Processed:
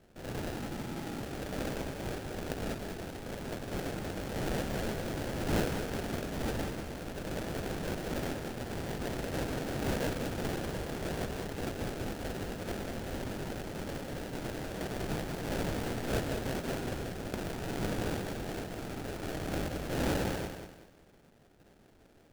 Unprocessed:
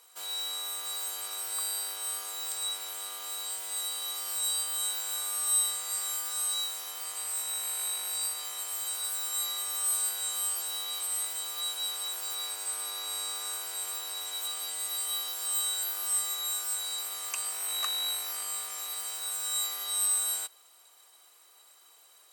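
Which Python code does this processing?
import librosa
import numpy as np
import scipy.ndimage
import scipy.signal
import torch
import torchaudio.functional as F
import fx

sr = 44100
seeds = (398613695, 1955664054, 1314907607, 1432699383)

y = fx.sine_speech(x, sr, at=(0.58, 1.2))
y = fx.sample_hold(y, sr, seeds[0], rate_hz=1100.0, jitter_pct=20)
y = fx.echo_crushed(y, sr, ms=192, feedback_pct=35, bits=10, wet_db=-7)
y = y * librosa.db_to_amplitude(-3.0)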